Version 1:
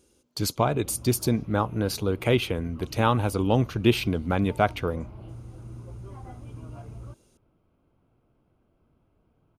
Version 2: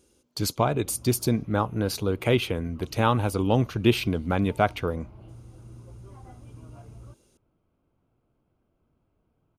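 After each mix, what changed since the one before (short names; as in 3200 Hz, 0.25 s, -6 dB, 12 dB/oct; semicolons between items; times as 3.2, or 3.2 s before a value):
background -4.5 dB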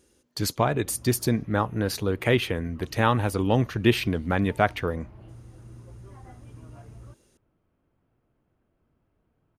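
master: add bell 1800 Hz +12.5 dB 0.24 oct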